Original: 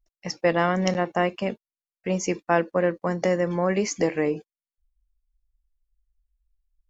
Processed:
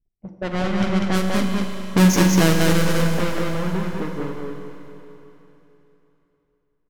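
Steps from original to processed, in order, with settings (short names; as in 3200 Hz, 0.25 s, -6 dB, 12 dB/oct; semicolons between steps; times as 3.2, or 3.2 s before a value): half-waves squared off; Doppler pass-by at 2, 19 m/s, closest 5.3 m; dynamic EQ 510 Hz, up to -6 dB, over -39 dBFS, Q 1.1; low-pass opened by the level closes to 360 Hz, open at -25 dBFS; on a send: echo 0.196 s -3 dB; on the sum: Schroeder reverb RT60 3.3 s, combs from 33 ms, DRR 4.5 dB; in parallel at +1 dB: limiter -19.5 dBFS, peak gain reduction 10.5 dB; on the sum: low shelf 380 Hz +5 dB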